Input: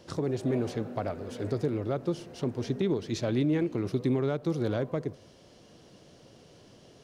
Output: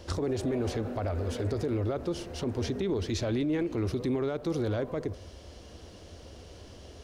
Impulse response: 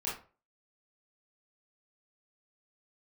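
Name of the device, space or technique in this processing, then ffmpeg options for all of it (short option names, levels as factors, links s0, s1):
car stereo with a boomy subwoofer: -af "lowshelf=f=100:t=q:w=3:g=10,alimiter=level_in=1.58:limit=0.0631:level=0:latency=1:release=51,volume=0.631,volume=1.88"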